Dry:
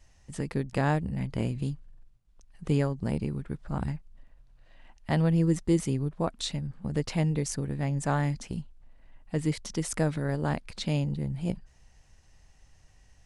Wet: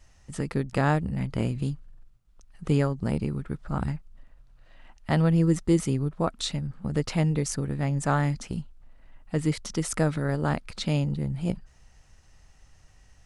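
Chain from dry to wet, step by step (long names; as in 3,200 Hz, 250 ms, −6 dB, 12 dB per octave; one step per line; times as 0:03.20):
parametric band 1,300 Hz +6.5 dB 0.24 octaves
level +2.5 dB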